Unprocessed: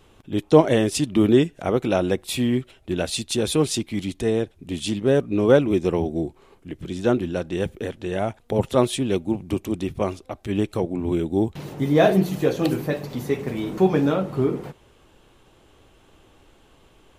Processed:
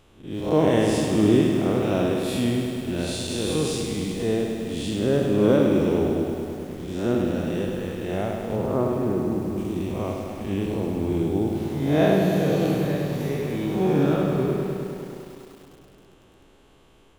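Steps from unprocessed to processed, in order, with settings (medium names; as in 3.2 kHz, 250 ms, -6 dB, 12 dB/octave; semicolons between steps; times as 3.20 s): spectral blur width 161 ms; 8.56–9.58 s: low-pass 1.6 kHz 24 dB/octave; on a send at -12.5 dB: reverberation RT60 4.1 s, pre-delay 5 ms; on the sum: bit-crushed delay 102 ms, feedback 80%, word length 8-bit, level -6 dB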